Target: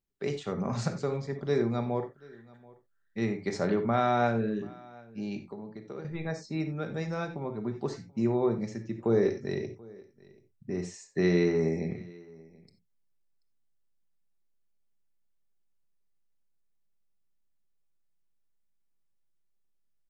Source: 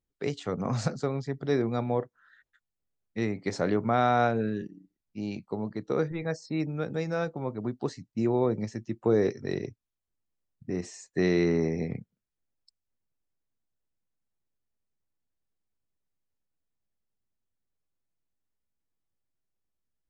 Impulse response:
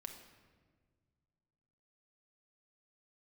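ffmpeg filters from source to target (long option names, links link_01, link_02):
-filter_complex "[0:a]asettb=1/sr,asplit=3[link_01][link_02][link_03];[link_01]atrim=end=5.384[link_04];[link_02]atrim=start=5.38:end=6.05,asetpts=PTS-STARTPTS,afade=type=in:duration=0.004:curve=qsin,afade=type=out:start_time=0.666:duration=0.004:curve=qsin,acompressor=threshold=-41dB:ratio=2.5[link_05];[link_03]atrim=start=6.046[link_06];[link_04][link_05]acrossfade=duration=0.004:curve1=hsin:curve2=qsin[link_07];[link_07][link_06]acrossfade=duration=0.004:curve1=qsin:curve2=hsin,aecho=1:1:733:0.0668[link_08];[1:a]atrim=start_sample=2205,atrim=end_sample=4410[link_09];[link_08][link_09]afir=irnorm=-1:irlink=0,volume=3dB"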